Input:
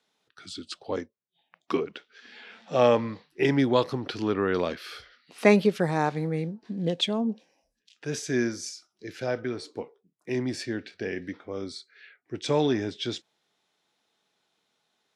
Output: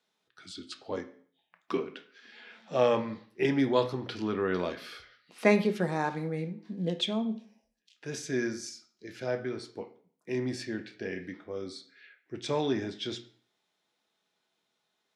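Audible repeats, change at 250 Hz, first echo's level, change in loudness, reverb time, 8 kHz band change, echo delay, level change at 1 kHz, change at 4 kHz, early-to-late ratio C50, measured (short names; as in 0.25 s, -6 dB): none, -4.0 dB, none, -4.0 dB, 0.50 s, -5.0 dB, none, -4.5 dB, -4.0 dB, 13.0 dB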